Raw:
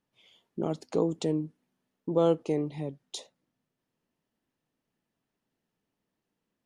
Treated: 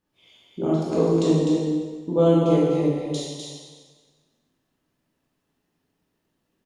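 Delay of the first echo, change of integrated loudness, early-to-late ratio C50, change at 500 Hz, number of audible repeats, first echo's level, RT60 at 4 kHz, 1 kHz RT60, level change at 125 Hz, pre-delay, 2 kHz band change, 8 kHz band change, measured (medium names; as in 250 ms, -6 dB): 252 ms, +8.5 dB, -3.5 dB, +8.0 dB, 1, -4.5 dB, 1.4 s, 1.5 s, +11.5 dB, 7 ms, +8.5 dB, +8.5 dB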